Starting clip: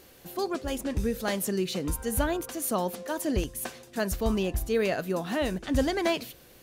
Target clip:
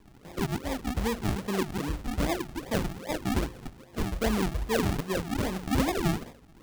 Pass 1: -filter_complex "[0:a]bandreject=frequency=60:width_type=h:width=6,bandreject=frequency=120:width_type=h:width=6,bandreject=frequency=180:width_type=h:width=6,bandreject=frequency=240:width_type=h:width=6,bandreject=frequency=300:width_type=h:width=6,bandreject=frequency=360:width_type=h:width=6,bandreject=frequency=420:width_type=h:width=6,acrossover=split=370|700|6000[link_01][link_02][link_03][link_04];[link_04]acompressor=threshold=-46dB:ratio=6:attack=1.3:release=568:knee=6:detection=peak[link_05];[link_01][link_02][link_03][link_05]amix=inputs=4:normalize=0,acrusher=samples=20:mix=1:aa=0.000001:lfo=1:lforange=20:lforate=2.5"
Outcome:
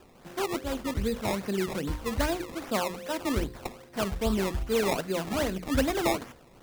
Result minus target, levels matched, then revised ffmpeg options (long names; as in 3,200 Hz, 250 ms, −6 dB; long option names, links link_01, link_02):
sample-and-hold swept by an LFO: distortion −11 dB
-filter_complex "[0:a]bandreject=frequency=60:width_type=h:width=6,bandreject=frequency=120:width_type=h:width=6,bandreject=frequency=180:width_type=h:width=6,bandreject=frequency=240:width_type=h:width=6,bandreject=frequency=300:width_type=h:width=6,bandreject=frequency=360:width_type=h:width=6,bandreject=frequency=420:width_type=h:width=6,acrossover=split=370|700|6000[link_01][link_02][link_03][link_04];[link_04]acompressor=threshold=-46dB:ratio=6:attack=1.3:release=568:knee=6:detection=peak[link_05];[link_01][link_02][link_03][link_05]amix=inputs=4:normalize=0,acrusher=samples=60:mix=1:aa=0.000001:lfo=1:lforange=60:lforate=2.5"